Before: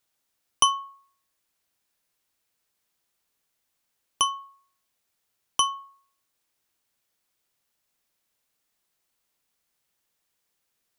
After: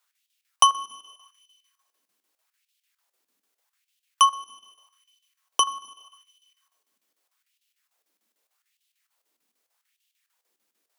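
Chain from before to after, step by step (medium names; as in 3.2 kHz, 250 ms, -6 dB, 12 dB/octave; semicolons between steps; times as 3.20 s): Schroeder reverb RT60 1.7 s, combs from 28 ms, DRR 16.5 dB; in parallel at -11 dB: sine folder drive 4 dB, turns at -3.5 dBFS; on the sum: square tremolo 6.7 Hz, depth 65%, duty 75%; LFO high-pass sine 0.82 Hz 230–3000 Hz; trim -3 dB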